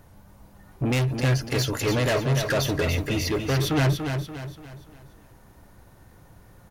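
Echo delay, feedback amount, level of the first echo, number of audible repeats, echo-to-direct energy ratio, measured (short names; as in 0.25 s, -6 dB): 0.289 s, 41%, -6.5 dB, 4, -5.5 dB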